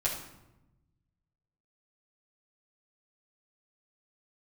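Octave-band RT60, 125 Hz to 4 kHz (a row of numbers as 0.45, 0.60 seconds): 1.9, 1.4, 1.0, 0.90, 0.75, 0.60 seconds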